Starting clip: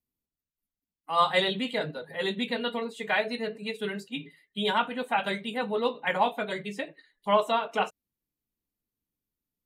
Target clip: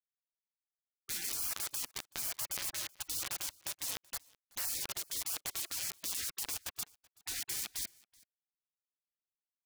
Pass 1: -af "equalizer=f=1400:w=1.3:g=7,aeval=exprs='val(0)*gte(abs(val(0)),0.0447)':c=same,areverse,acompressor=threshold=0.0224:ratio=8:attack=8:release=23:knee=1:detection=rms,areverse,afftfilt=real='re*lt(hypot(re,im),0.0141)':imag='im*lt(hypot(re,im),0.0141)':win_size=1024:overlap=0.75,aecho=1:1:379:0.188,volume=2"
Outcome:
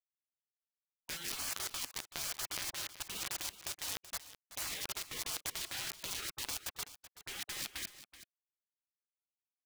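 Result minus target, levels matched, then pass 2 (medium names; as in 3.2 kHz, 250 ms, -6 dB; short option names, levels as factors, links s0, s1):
compression: peak gain reduction +9 dB; echo-to-direct +11.5 dB
-af "equalizer=f=1400:w=1.3:g=7,aeval=exprs='val(0)*gte(abs(val(0)),0.0447)':c=same,areverse,acompressor=threshold=0.075:ratio=8:attack=8:release=23:knee=1:detection=rms,areverse,afftfilt=real='re*lt(hypot(re,im),0.0141)':imag='im*lt(hypot(re,im),0.0141)':win_size=1024:overlap=0.75,aecho=1:1:379:0.0501,volume=2"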